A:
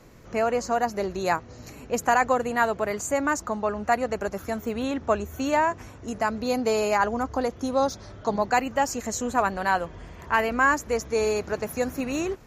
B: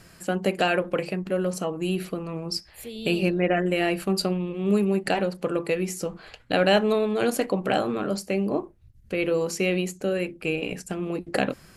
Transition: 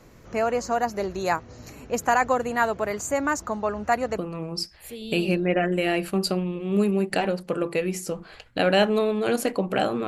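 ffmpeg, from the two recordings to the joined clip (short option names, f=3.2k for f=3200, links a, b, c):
-filter_complex "[0:a]apad=whole_dur=10.07,atrim=end=10.07,atrim=end=4.182[a];[1:a]atrim=start=2.118:end=8.01[b];[a][b]acrossfade=d=0.004:c1=hsin:c2=hsin"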